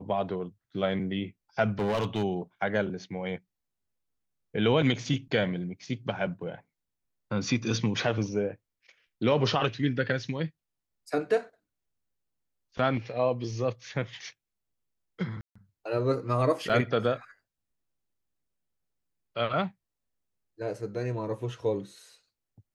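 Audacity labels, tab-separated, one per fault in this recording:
1.790000	2.240000	clipped -24 dBFS
15.410000	15.550000	gap 0.145 s
16.690000	16.700000	gap 6.3 ms

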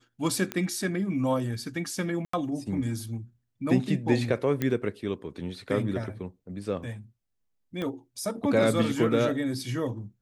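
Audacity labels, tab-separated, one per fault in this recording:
0.520000	0.520000	pop -15 dBFS
2.250000	2.330000	gap 84 ms
4.620000	4.620000	pop -14 dBFS
7.820000	7.820000	pop -21 dBFS

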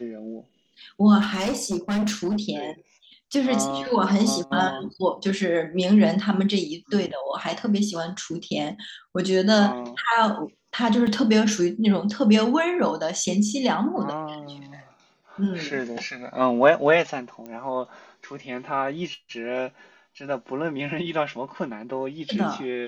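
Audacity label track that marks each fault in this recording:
1.200000	2.400000	clipped -20.5 dBFS
11.070000	11.070000	gap 3 ms
17.460000	17.460000	pop -25 dBFS

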